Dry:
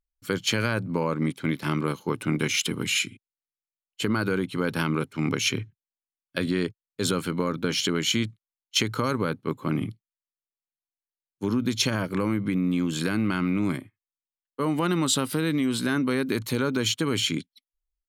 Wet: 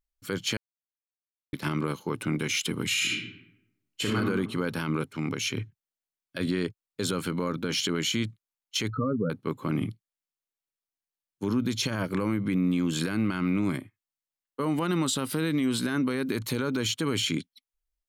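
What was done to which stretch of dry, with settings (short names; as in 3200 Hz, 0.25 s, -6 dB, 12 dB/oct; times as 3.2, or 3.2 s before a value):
0.57–1.53 mute
2.87–4.15 reverb throw, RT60 0.84 s, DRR -4 dB
5.08–5.57 compressor 1.5:1, threshold -33 dBFS
8.9–9.3 spectral contrast raised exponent 3.3
whole clip: limiter -18 dBFS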